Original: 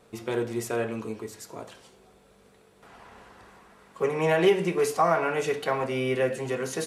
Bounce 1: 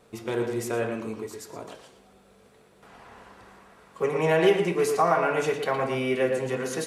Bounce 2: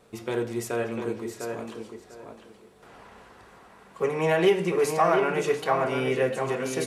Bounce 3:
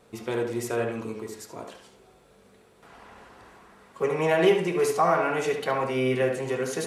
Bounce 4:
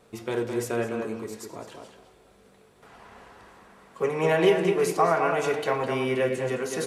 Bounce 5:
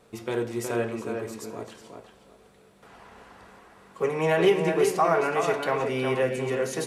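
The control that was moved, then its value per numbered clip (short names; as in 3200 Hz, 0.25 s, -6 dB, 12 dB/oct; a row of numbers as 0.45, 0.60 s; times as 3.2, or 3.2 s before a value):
tape echo, time: 115, 700, 72, 210, 367 ms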